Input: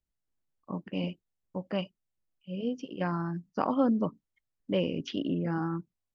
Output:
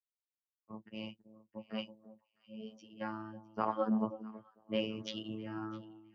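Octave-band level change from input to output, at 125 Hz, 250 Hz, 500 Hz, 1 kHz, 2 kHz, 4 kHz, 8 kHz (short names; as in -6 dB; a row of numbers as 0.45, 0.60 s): -13.5 dB, -8.0 dB, -7.0 dB, -4.5 dB, -6.0 dB, -3.0 dB, n/a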